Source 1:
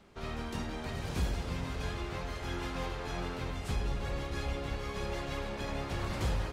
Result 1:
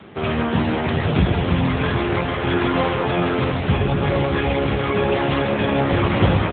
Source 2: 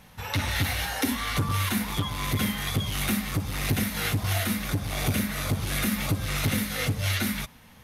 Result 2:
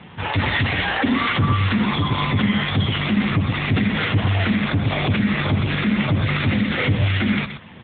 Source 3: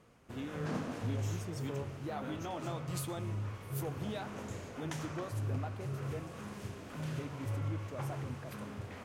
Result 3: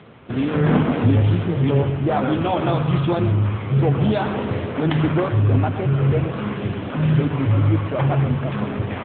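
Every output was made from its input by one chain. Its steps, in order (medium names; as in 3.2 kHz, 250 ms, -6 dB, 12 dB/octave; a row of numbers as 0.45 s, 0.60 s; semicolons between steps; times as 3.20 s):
delay 123 ms -11 dB; peak limiter -21 dBFS; AMR-NB 7.95 kbps 8 kHz; normalise loudness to -20 LUFS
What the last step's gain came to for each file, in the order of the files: +20.0 dB, +13.5 dB, +20.5 dB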